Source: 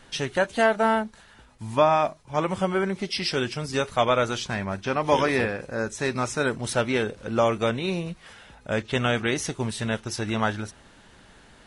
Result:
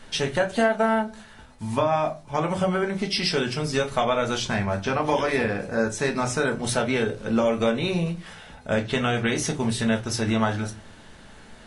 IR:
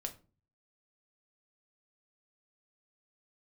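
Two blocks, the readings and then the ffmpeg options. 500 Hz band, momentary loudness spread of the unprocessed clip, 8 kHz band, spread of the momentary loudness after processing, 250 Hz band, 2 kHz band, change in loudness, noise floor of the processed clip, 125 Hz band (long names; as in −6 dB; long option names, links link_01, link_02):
+0.5 dB, 9 LU, +3.0 dB, 5 LU, +3.0 dB, +0.5 dB, +0.5 dB, −47 dBFS, +2.0 dB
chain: -filter_complex "[0:a]acompressor=threshold=-23dB:ratio=6[link_01];[1:a]atrim=start_sample=2205,asetrate=52920,aresample=44100[link_02];[link_01][link_02]afir=irnorm=-1:irlink=0,volume=7dB"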